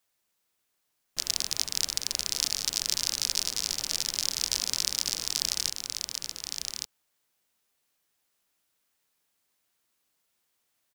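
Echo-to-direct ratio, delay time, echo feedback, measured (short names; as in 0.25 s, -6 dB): -5.0 dB, 1.164 s, no steady repeat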